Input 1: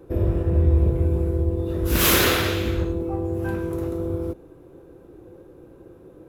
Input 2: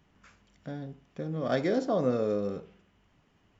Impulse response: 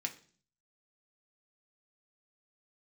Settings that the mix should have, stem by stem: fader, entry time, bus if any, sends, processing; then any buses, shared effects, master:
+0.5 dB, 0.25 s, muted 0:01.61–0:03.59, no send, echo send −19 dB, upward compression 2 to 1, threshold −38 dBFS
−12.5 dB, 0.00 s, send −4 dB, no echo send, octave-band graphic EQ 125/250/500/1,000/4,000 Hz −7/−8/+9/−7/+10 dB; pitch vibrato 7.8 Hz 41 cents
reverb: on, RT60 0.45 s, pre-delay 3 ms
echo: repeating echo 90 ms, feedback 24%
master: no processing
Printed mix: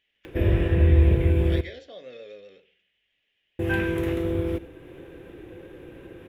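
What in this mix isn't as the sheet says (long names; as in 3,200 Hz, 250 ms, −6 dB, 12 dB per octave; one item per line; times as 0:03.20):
stem 2 −12.5 dB → −21.0 dB
master: extra flat-topped bell 2,400 Hz +15 dB 1.3 octaves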